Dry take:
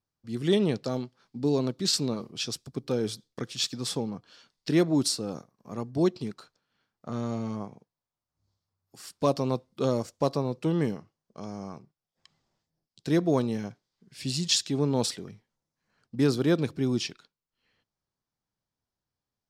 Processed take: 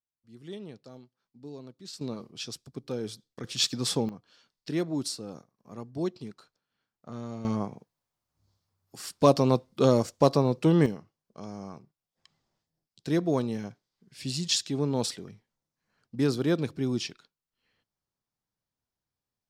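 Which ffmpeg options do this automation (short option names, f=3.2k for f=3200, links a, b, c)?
-af "asetnsamples=n=441:p=0,asendcmd='2.01 volume volume -5.5dB;3.44 volume volume 3dB;4.09 volume volume -6.5dB;7.45 volume volume 5dB;10.86 volume volume -2dB',volume=-17.5dB"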